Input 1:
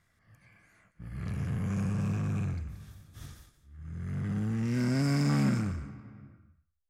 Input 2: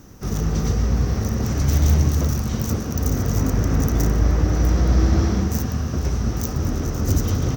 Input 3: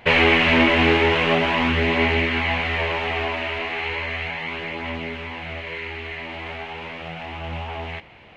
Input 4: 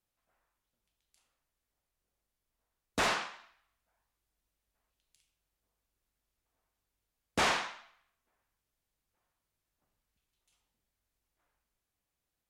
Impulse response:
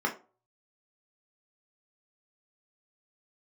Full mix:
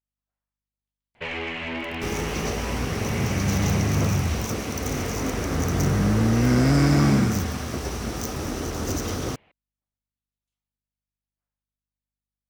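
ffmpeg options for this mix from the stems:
-filter_complex "[0:a]dynaudnorm=f=500:g=9:m=9dB,adelay=1700,volume=2dB[a];[1:a]acrossover=split=270|3000[b][c][d];[b]acompressor=threshold=-41dB:ratio=2[e];[e][c][d]amix=inputs=3:normalize=0,acrusher=bits=5:mix=0:aa=0.000001,adelay=1800,volume=0.5dB[f];[2:a]asoftclip=type=tanh:threshold=-8.5dB,adelay=1150,volume=-13.5dB[g];[3:a]aeval=exprs='val(0)+0.000178*(sin(2*PI*50*n/s)+sin(2*PI*2*50*n/s)/2+sin(2*PI*3*50*n/s)/3+sin(2*PI*4*50*n/s)/4+sin(2*PI*5*50*n/s)/5)':c=same,volume=-17dB[h];[a][f][g][h]amix=inputs=4:normalize=0,highshelf=f=12k:g=-10.5"

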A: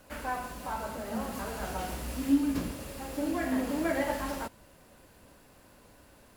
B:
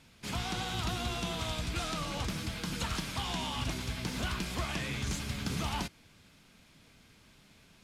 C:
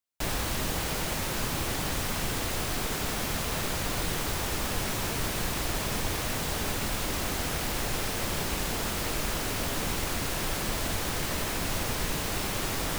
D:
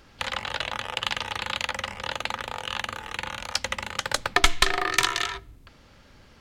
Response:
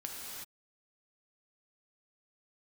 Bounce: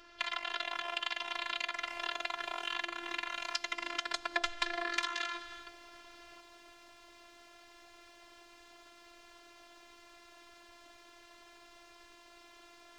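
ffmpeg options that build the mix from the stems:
-filter_complex "[0:a]acompressor=threshold=-34dB:ratio=6,highpass=f=170:w=0.5412,highpass=f=170:w=1.3066,adelay=550,volume=-2.5dB[a];[2:a]volume=-20dB[b];[3:a]volume=2dB,asplit=2[c][d];[d]volume=-15dB[e];[4:a]atrim=start_sample=2205[f];[e][f]afir=irnorm=-1:irlink=0[g];[a][b][c][g]amix=inputs=4:normalize=0,acrossover=split=340 6300:gain=0.2 1 0.126[h][i][j];[h][i][j]amix=inputs=3:normalize=0,afftfilt=real='hypot(re,im)*cos(PI*b)':imag='0':win_size=512:overlap=0.75,acompressor=threshold=-33dB:ratio=3"

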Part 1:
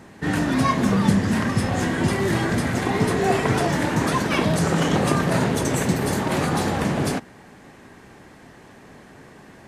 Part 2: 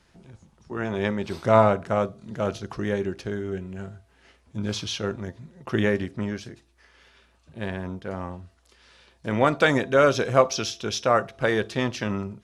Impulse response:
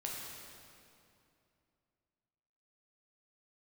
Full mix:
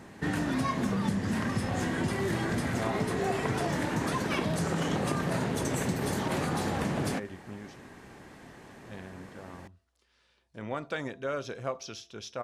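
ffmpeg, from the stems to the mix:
-filter_complex "[0:a]volume=-3.5dB[a];[1:a]adelay=1300,volume=-14dB[b];[a][b]amix=inputs=2:normalize=0,acompressor=threshold=-28dB:ratio=3"

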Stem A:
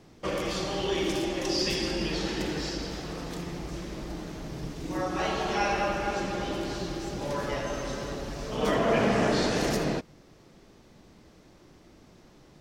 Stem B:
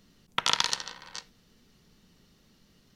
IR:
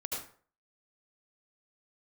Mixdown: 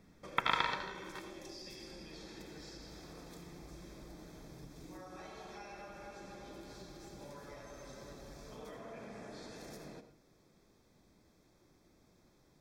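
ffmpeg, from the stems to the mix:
-filter_complex "[0:a]highshelf=f=9.2k:g=10.5,acompressor=threshold=-34dB:ratio=6,volume=-15.5dB,asplit=2[a][b];[b]volume=-8.5dB[c];[1:a]lowpass=f=2.8k:w=0.5412,lowpass=f=2.8k:w=1.3066,volume=-5.5dB,asplit=2[d][e];[e]volume=-4dB[f];[2:a]atrim=start_sample=2205[g];[c][f]amix=inputs=2:normalize=0[h];[h][g]afir=irnorm=-1:irlink=0[i];[a][d][i]amix=inputs=3:normalize=0,asuperstop=centerf=2900:order=12:qfactor=7.3"

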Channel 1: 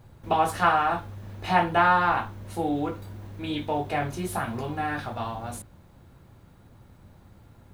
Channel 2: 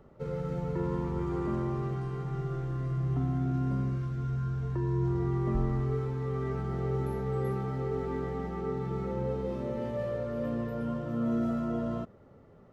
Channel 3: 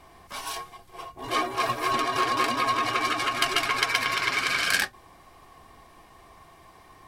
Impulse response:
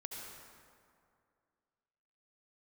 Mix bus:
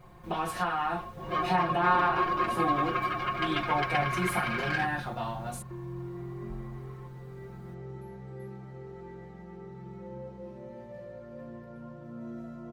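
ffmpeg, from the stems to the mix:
-filter_complex "[0:a]alimiter=limit=-16.5dB:level=0:latency=1:release=256,volume=-4.5dB[a];[1:a]adelay=950,volume=-13dB[b];[2:a]lowpass=2.1k,volume=-7dB[c];[a][b][c]amix=inputs=3:normalize=0,aecho=1:1:5.6:0.83"

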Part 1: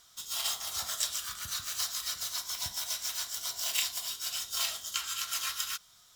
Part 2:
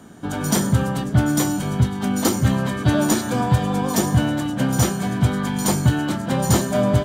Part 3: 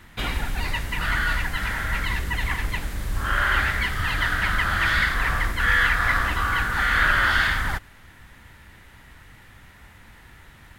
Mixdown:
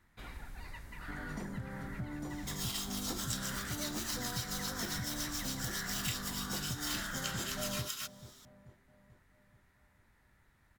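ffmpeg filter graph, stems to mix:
-filter_complex "[0:a]acompressor=threshold=-44dB:ratio=2,adelay=2300,volume=1.5dB[a];[1:a]lowpass=f=2k:p=1,adelay=850,volume=-18.5dB,asplit=2[b][c];[c]volume=-20dB[d];[2:a]volume=-20dB[e];[b][e]amix=inputs=2:normalize=0,equalizer=f=3k:t=o:w=0.53:g=-7.5,acompressor=threshold=-37dB:ratio=6,volume=0dB[f];[d]aecho=0:1:436|872|1308|1744|2180|2616|3052|3488:1|0.55|0.303|0.166|0.0915|0.0503|0.0277|0.0152[g];[a][f][g]amix=inputs=3:normalize=0"

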